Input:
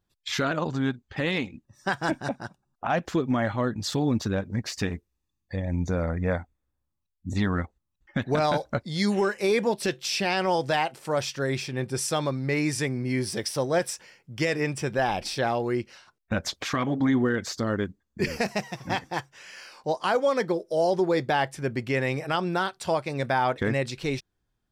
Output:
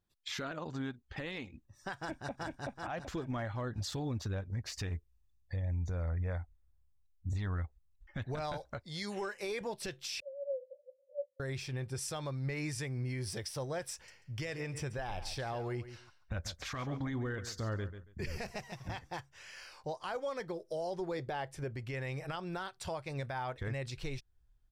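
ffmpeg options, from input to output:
-filter_complex "[0:a]asplit=2[a][b];[b]afade=t=in:st=1.99:d=0.01,afade=t=out:st=2.4:d=0.01,aecho=0:1:380|760|1140|1520|1900:0.891251|0.3565|0.1426|0.0570401|0.022816[c];[a][c]amix=inputs=2:normalize=0,asettb=1/sr,asplit=3[d][e][f];[d]atrim=end=8.654[g];[e]atrim=start=8.65:end=9.61,asetpts=PTS-STARTPTS,afade=t=in:d=0.004:c=qsin,afade=t=out:st=0.956:d=0.004:c=qsin,lowshelf=f=180:g=-9.5[h];[f]atrim=start=9.606[i];[g][h]acrossfade=d=0.004:c1=hsin:c2=qsin[j];[j][i]acrossfade=d=0.004:c1=qsin:c2=hsin,asettb=1/sr,asplit=3[k][l][m];[k]atrim=end=10.204[n];[l]atrim=start=10.2:end=11.4,asetpts=PTS-STARTPTS,afade=t=in:d=0.004:c=qsin,afade=t=out:st=1.196:d=0.004:c=qsin,asuperpass=centerf=540:order=12:qfactor=7.6[o];[m]atrim=start=11.396[p];[n][o]acrossfade=d=0.004:c1=hsin:c2=qsin[q];[q][p]acrossfade=d=0.004:c1=qsin:c2=hsin,asettb=1/sr,asplit=3[r][s][t];[r]atrim=end=13.944[u];[s]atrim=start=13.94:end=18.88,asetpts=PTS-STARTPTS,afade=t=in:d=0.004:c=qsin,afade=t=out:st=4.936:d=0.004:c=qsin,aecho=1:1:139|278:0.2|0.0319,atrim=end_sample=217854[v];[t]atrim=start=18.876[w];[u][v]acrossfade=d=0.004:c1=hsin:c2=qsin[x];[x][w]acrossfade=d=0.004:c1=qsin:c2=hsin,asplit=3[y][z][aa];[y]afade=t=out:st=21.17:d=0.02[ab];[z]equalizer=f=450:w=0.99:g=6.5,afade=t=in:st=21.17:d=0.02,afade=t=out:st=21.71:d=0.02[ac];[aa]afade=t=in:st=21.71:d=0.02[ad];[ab][ac][ad]amix=inputs=3:normalize=0,asubboost=boost=10:cutoff=69,alimiter=limit=-23.5dB:level=0:latency=1:release=236,volume=-6dB"

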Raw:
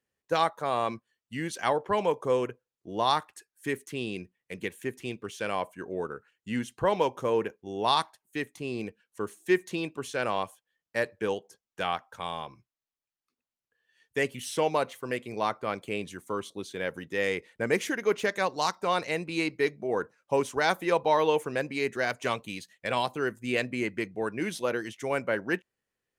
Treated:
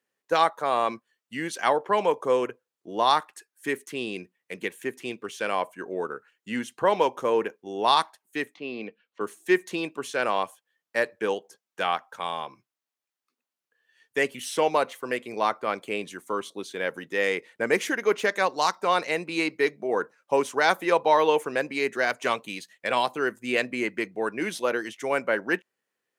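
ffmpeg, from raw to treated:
-filter_complex "[0:a]asettb=1/sr,asplit=3[a][b][c];[a]atrim=end=8.544[d];[b]atrim=start=8.54:end=9.21,asetpts=PTS-STARTPTS,afade=t=in:d=0.004:c=qsin,afade=t=out:st=0.666:d=0.004:c=qsin,highpass=f=140:w=0.5412,highpass=f=140:w=1.3066,equalizer=f=160:t=q:w=4:g=-7,equalizer=f=360:t=q:w=4:g=-6,equalizer=f=920:t=q:w=4:g=-5,equalizer=f=1.6k:t=q:w=4:g=-6,lowpass=f=4k:w=0.5412,lowpass=f=4k:w=1.3066[e];[c]atrim=start=9.206[f];[d][e]acrossfade=d=0.004:c1=hsin:c2=qsin[g];[g][f]acrossfade=d=0.004:c1=qsin:c2=hsin,highpass=220,equalizer=f=1.3k:t=o:w=1.9:g=2.5,volume=2.5dB"

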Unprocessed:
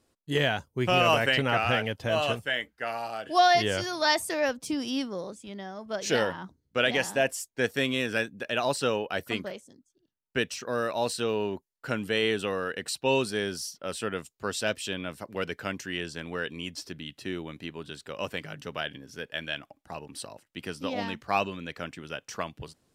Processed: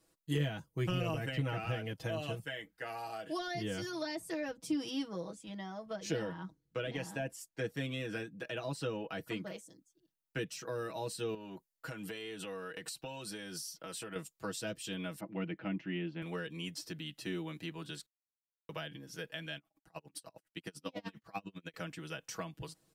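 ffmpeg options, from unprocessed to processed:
-filter_complex "[0:a]asettb=1/sr,asplit=3[a][b][c];[a]atrim=end=3.894[d];[b]atrim=start=3.89:end=9.52,asetpts=PTS-STARTPTS,afade=t=in:d=0.004:c=qsin,afade=t=out:st=5.626:d=0.004:c=qsin,highshelf=f=6.4k:g=-8.5[e];[c]atrim=start=9.516[f];[d][e]acrossfade=d=0.004:c1=hsin:c2=qsin[g];[g][f]acrossfade=d=0.004:c1=qsin:c2=hsin,asettb=1/sr,asplit=3[h][i][j];[h]atrim=end=11.344[k];[i]atrim=start=11.34:end=14.16,asetpts=PTS-STARTPTS,afade=t=in:d=0.004:c=qsin,afade=t=out:st=2.816:d=0.004:c=qsin,acompressor=threshold=-35dB:ratio=6:attack=3.2:release=140:knee=1:detection=peak[l];[j]atrim=start=14.156[m];[k][l]acrossfade=d=0.004:c1=hsin:c2=qsin[n];[n][m]acrossfade=d=0.004:c1=qsin:c2=hsin,asettb=1/sr,asplit=3[o][p][q];[o]atrim=end=15.204[r];[p]atrim=start=15.2:end=16.22,asetpts=PTS-STARTPTS,afade=t=in:d=0.004:c=qsin,afade=t=out:st=1.016:d=0.004:c=qsin,highpass=110,equalizer=f=190:t=q:w=4:g=5,equalizer=f=320:t=q:w=4:g=7,equalizer=f=450:t=q:w=4:g=-9,equalizer=f=1.1k:t=q:w=4:g=-6,equalizer=f=1.6k:t=q:w=4:g=-9,lowpass=f=2.6k:w=0.5412,lowpass=f=2.6k:w=1.3066[s];[q]atrim=start=16.216[t];[r][s]acrossfade=d=0.004:c1=hsin:c2=qsin[u];[u][t]acrossfade=d=0.004:c1=qsin:c2=hsin,asettb=1/sr,asplit=3[v][w][x];[v]atrim=end=19.574[y];[w]atrim=start=19.57:end=21.74,asetpts=PTS-STARTPTS,afade=t=in:d=0.004:c=qsin,afade=t=out:st=2.166:d=0.004:c=qsin,aeval=exprs='val(0)*pow(10,-36*(0.5-0.5*cos(2*PI*10*n/s))/20)':c=same[z];[x]atrim=start=21.736[aa];[y][z]acrossfade=d=0.004:c1=hsin:c2=qsin[ab];[ab][aa]acrossfade=d=0.004:c1=qsin:c2=hsin,asplit=3[ac][ad][ae];[ac]atrim=end=18.06,asetpts=PTS-STARTPTS,afade=t=out:st=18.056:d=0.004:c=hsin[af];[ad]atrim=start=18.06:end=18.69,asetpts=PTS-STARTPTS,volume=0[ag];[ae]atrim=start=18.69,asetpts=PTS-STARTPTS,afade=t=in:d=0.004:c=hsin[ah];[af][ag][ah]concat=n=3:v=0:a=1,highshelf=f=8.3k:g=8,aecho=1:1:6.2:0.92,acrossover=split=340[ai][aj];[aj]acompressor=threshold=-34dB:ratio=6[ak];[ai][ak]amix=inputs=2:normalize=0,volume=-6dB"

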